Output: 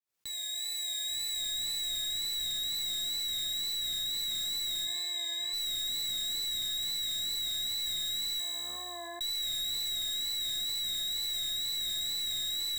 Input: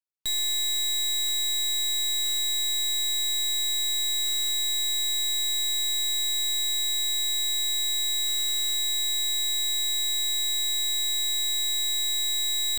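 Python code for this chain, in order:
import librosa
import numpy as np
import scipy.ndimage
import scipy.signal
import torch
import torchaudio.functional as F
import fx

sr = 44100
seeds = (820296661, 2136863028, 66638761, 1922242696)

y = fx.fade_in_head(x, sr, length_s=1.71)
y = scipy.signal.sosfilt(scipy.signal.butter(2, 43.0, 'highpass', fs=sr, output='sos'), y)
y = fx.doubler(y, sr, ms=47.0, db=-8.5)
y = y + 10.0 ** (-6.5 / 20.0) * np.pad(y, (int(1141 * sr / 1000.0), 0))[:len(y)]
y = fx.wow_flutter(y, sr, seeds[0], rate_hz=2.1, depth_cents=48.0)
y = fx.tilt_eq(y, sr, slope=-3.5, at=(4.84, 5.52), fade=0.02)
y = fx.steep_lowpass(y, sr, hz=1300.0, slope=36, at=(8.4, 9.21))
y = fx.comb_fb(y, sr, f0_hz=63.0, decay_s=1.4, harmonics='all', damping=0.0, mix_pct=80)
y = np.clip(y, -10.0 ** (-35.5 / 20.0), 10.0 ** (-35.5 / 20.0))
y = fx.env_flatten(y, sr, amount_pct=70)
y = y * librosa.db_to_amplitude(3.0)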